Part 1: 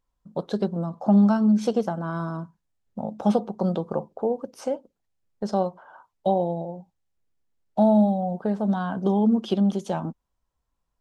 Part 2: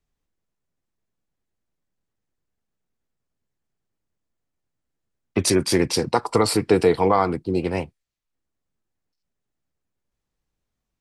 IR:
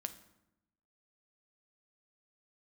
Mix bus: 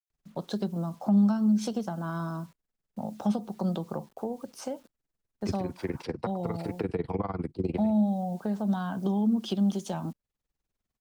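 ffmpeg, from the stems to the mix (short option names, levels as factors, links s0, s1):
-filter_complex "[0:a]equalizer=f=480:w=2.5:g=-5,acrusher=bits=9:mix=0:aa=0.000001,adynamicequalizer=threshold=0.00398:dfrequency=3300:dqfactor=0.7:tfrequency=3300:tqfactor=0.7:attack=5:release=100:ratio=0.375:range=3:mode=boostabove:tftype=highshelf,volume=0.708,asplit=2[s0][s1];[1:a]tremolo=f=20:d=0.9,acrossover=split=2900[s2][s3];[s3]acompressor=threshold=0.00251:ratio=4:attack=1:release=60[s4];[s2][s4]amix=inputs=2:normalize=0,adelay=100,volume=0.944[s5];[s1]apad=whole_len=494080[s6];[s5][s6]sidechaincompress=threshold=0.0355:ratio=8:attack=16:release=1180[s7];[s0][s7]amix=inputs=2:normalize=0,acrossover=split=250[s8][s9];[s9]acompressor=threshold=0.0282:ratio=10[s10];[s8][s10]amix=inputs=2:normalize=0"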